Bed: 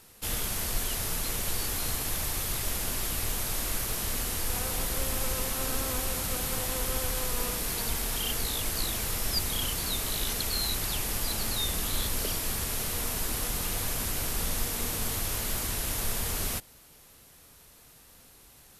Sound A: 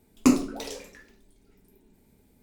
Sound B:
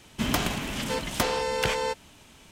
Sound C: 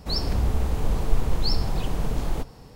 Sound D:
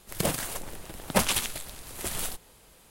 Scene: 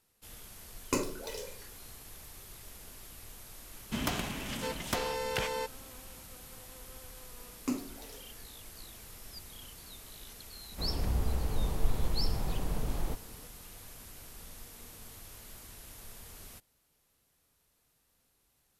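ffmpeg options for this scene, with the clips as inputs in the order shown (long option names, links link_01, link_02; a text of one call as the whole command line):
ffmpeg -i bed.wav -i cue0.wav -i cue1.wav -i cue2.wav -filter_complex "[1:a]asplit=2[link_01][link_02];[0:a]volume=-18.5dB[link_03];[link_01]aecho=1:1:2:0.77,atrim=end=2.42,asetpts=PTS-STARTPTS,volume=-7dB,afade=type=in:duration=0.004:curve=hsin,afade=type=out:start_time=2.416:duration=0.004:curve=hsin,adelay=670[link_04];[2:a]atrim=end=2.51,asetpts=PTS-STARTPTS,volume=-7dB,afade=type=in:duration=0.004:curve=hsin,afade=type=out:start_time=2.506:duration=0.004:curve=hsin,adelay=164493S[link_05];[link_02]atrim=end=2.42,asetpts=PTS-STARTPTS,volume=-14.5dB,afade=type=in:duration=0.004:curve=hsin,afade=type=out:start_time=2.416:duration=0.004:curve=hsin,adelay=7420[link_06];[3:a]atrim=end=2.75,asetpts=PTS-STARTPTS,volume=-7.5dB,afade=type=in:duration=0.004:curve=hsin,afade=type=out:start_time=2.746:duration=0.004:curve=hsin,adelay=10720[link_07];[link_03][link_04][link_05][link_06][link_07]amix=inputs=5:normalize=0" out.wav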